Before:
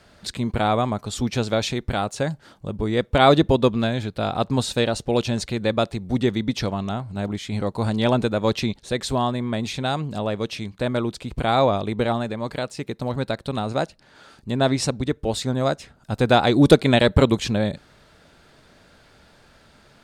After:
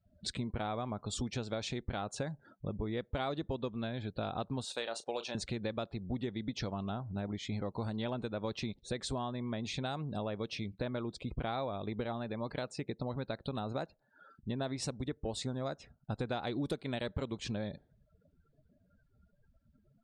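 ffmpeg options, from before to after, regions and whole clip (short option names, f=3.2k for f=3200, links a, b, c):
-filter_complex "[0:a]asettb=1/sr,asplit=3[a][b][c];[a]atrim=end=4.654[d];[b]atrim=start=4.65:end=5.35,asetpts=PTS-STARTPTS,afade=t=in:d=0.004:c=qsin,afade=t=out:st=0.696:d=0.004:c=qsin,highpass=530,asplit=2[e][f];[f]adelay=35,volume=-12.5dB[g];[e][g]amix=inputs=2:normalize=0,atrim=end_sample=30870[h];[c]atrim=start=5.346[i];[d][h]acrossfade=d=0.004:c1=hsin:c2=qsin[j];[j][i]acrossfade=d=0.004:c1=qsin:c2=hsin,afftdn=nr=35:nf=-43,acompressor=threshold=-28dB:ratio=8,volume=-5.5dB"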